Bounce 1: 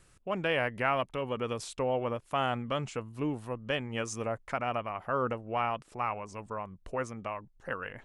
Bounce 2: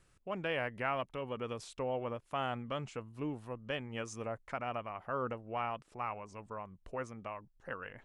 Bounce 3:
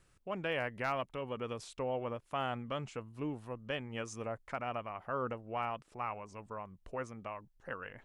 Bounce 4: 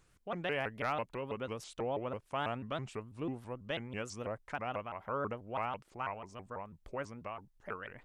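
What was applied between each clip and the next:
high shelf 8100 Hz -6.5 dB; gain -6 dB
overloaded stage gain 24.5 dB
shaped vibrato saw up 6.1 Hz, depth 250 cents

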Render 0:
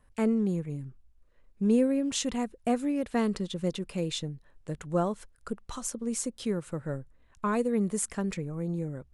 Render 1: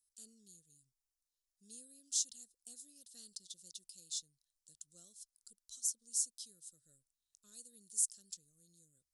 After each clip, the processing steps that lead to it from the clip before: inverse Chebyshev high-pass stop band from 2400 Hz, stop band 40 dB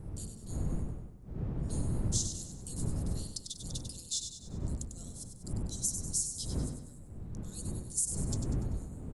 wind noise 140 Hz -42 dBFS; compressor 3:1, threshold -38 dBFS, peak gain reduction 8 dB; on a send: feedback echo 97 ms, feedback 47%, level -7.5 dB; on the sum: gain +7.5 dB

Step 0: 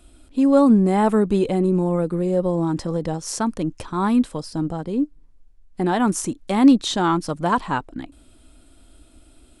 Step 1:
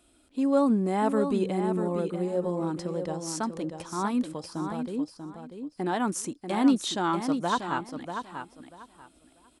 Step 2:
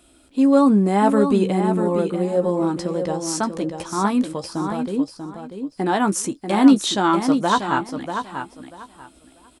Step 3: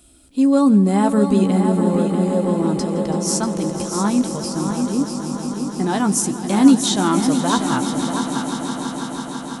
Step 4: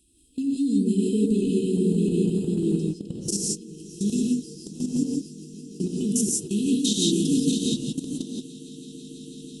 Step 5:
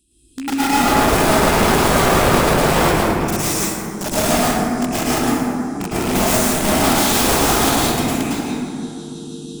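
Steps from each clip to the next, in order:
HPF 230 Hz 6 dB/oct; on a send: feedback echo 0.64 s, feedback 21%, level -7.5 dB; on the sum: gain -6.5 dB
doubler 15 ms -9.5 dB; gain +8 dB
tone controls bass +9 dB, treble +9 dB; on a send: swelling echo 0.165 s, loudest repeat 5, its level -14 dB; on the sum: gain -3 dB
FFT band-reject 480–2500 Hz; level quantiser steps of 20 dB; non-linear reverb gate 0.2 s rising, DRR -2.5 dB; gain -4.5 dB
rattling part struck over -33 dBFS, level -27 dBFS; wrapped overs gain 19.5 dB; plate-style reverb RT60 2.5 s, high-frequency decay 0.35×, pre-delay 95 ms, DRR -10 dB

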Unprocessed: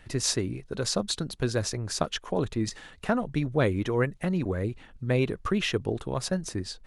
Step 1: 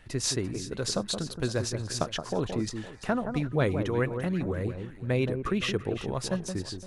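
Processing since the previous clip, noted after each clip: echo with dull and thin repeats by turns 0.171 s, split 1400 Hz, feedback 54%, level -7 dB; gain -2 dB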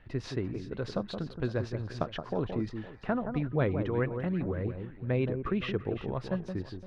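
air absorption 340 m; gain -1.5 dB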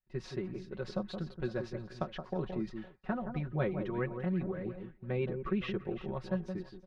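comb 5.4 ms, depth 86%; expander -35 dBFS; gain -6.5 dB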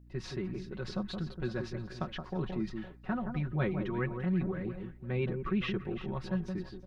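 dynamic EQ 550 Hz, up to -7 dB, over -50 dBFS, Q 1.4; hum 60 Hz, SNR 21 dB; transient shaper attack -3 dB, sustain +1 dB; gain +4 dB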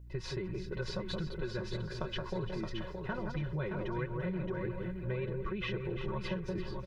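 comb 2 ms, depth 69%; compressor, threshold -36 dBFS, peak gain reduction 11 dB; on a send: feedback echo 0.621 s, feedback 26%, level -6 dB; on the sum: gain +2.5 dB

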